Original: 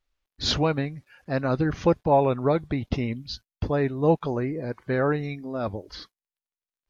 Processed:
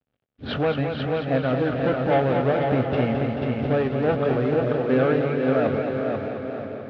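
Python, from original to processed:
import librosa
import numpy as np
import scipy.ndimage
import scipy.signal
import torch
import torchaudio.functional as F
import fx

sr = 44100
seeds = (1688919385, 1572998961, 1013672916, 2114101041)

p1 = fx.high_shelf(x, sr, hz=2200.0, db=-6.5)
p2 = fx.env_lowpass(p1, sr, base_hz=440.0, full_db=-19.0)
p3 = fx.rider(p2, sr, range_db=4, speed_s=0.5)
p4 = p2 + (p3 * 10.0 ** (2.5 / 20.0))
p5 = 10.0 ** (-14.5 / 20.0) * np.tanh(p4 / 10.0 ** (-14.5 / 20.0))
p6 = fx.quant_companded(p5, sr, bits=6)
p7 = fx.cabinet(p6, sr, low_hz=150.0, low_slope=12, high_hz=3500.0, hz=(170.0, 340.0, 1000.0, 2000.0), db=(-5, -8, -9, -4))
p8 = fx.doubler(p7, sr, ms=23.0, db=-11.0)
p9 = p8 + fx.echo_feedback(p8, sr, ms=489, feedback_pct=38, wet_db=-4.5, dry=0)
y = fx.echo_warbled(p9, sr, ms=219, feedback_pct=72, rate_hz=2.8, cents=54, wet_db=-7.0)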